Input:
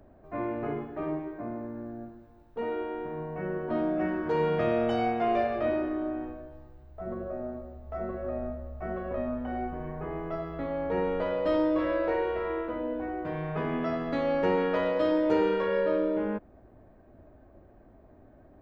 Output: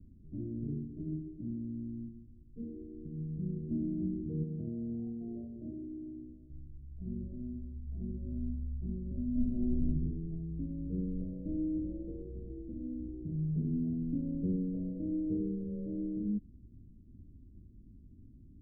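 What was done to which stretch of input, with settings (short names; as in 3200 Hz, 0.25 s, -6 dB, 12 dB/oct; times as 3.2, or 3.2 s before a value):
4.43–6.5 tilt +2.5 dB/oct
9.31–9.88 reverb throw, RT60 1 s, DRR -8 dB
whole clip: Wiener smoothing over 41 samples; inverse Chebyshev low-pass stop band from 1100 Hz, stop band 70 dB; gain +3.5 dB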